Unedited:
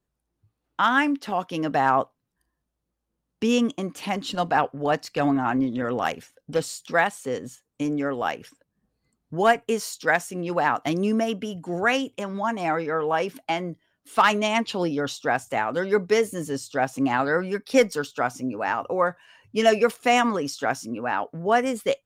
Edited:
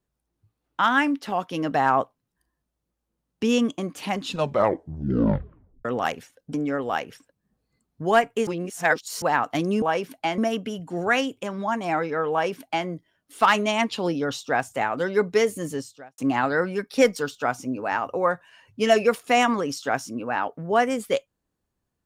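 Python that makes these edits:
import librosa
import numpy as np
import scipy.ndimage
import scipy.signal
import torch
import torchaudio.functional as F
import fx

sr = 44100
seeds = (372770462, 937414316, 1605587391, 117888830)

y = fx.edit(x, sr, fx.tape_stop(start_s=4.2, length_s=1.65),
    fx.cut(start_s=6.54, length_s=1.32),
    fx.reverse_span(start_s=9.79, length_s=0.75),
    fx.duplicate(start_s=13.07, length_s=0.56, to_s=11.14),
    fx.fade_out_span(start_s=16.5, length_s=0.44, curve='qua'), tone=tone)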